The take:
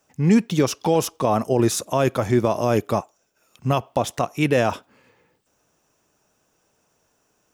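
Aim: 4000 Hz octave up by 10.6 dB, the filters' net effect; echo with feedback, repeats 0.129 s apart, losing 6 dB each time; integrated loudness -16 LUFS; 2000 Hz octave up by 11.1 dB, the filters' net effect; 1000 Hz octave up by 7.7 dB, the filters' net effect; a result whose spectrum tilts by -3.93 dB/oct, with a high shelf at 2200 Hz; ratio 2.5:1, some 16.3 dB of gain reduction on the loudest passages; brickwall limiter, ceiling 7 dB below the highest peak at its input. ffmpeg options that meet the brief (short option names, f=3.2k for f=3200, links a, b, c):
-af "equalizer=f=1k:t=o:g=7,equalizer=f=2k:t=o:g=7,highshelf=f=2.2k:g=6.5,equalizer=f=4k:t=o:g=5,acompressor=threshold=-36dB:ratio=2.5,alimiter=limit=-21dB:level=0:latency=1,aecho=1:1:129|258|387|516|645|774:0.501|0.251|0.125|0.0626|0.0313|0.0157,volume=17dB"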